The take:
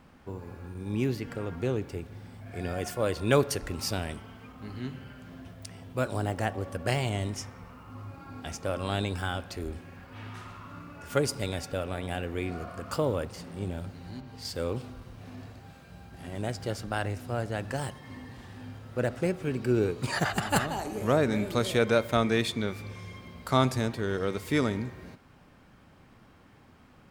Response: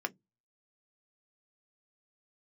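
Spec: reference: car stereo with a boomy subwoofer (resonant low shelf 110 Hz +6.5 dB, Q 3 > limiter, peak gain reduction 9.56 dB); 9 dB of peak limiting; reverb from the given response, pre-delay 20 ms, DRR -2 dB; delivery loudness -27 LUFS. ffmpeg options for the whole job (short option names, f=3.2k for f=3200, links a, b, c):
-filter_complex "[0:a]alimiter=limit=-17dB:level=0:latency=1,asplit=2[a][b];[1:a]atrim=start_sample=2205,adelay=20[c];[b][c]afir=irnorm=-1:irlink=0,volume=-2dB[d];[a][d]amix=inputs=2:normalize=0,lowshelf=f=110:t=q:w=3:g=6.5,volume=4.5dB,alimiter=limit=-15dB:level=0:latency=1"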